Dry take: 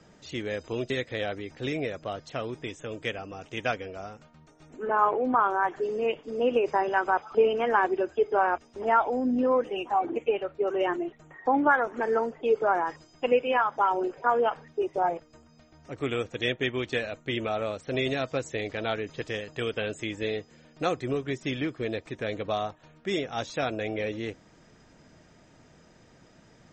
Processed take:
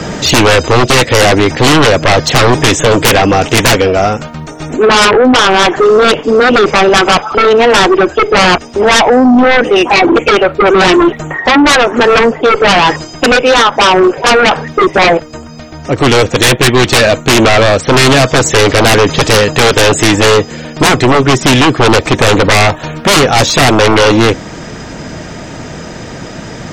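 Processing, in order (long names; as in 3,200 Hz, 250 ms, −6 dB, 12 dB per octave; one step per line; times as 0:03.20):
one-sided soft clipper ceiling −13 dBFS
speech leveller 0.5 s
sine wavefolder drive 18 dB, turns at −10 dBFS
level +7 dB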